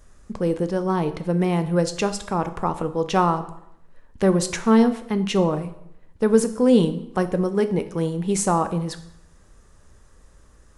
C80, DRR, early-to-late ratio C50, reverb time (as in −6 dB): 16.0 dB, 9.5 dB, 13.5 dB, 0.75 s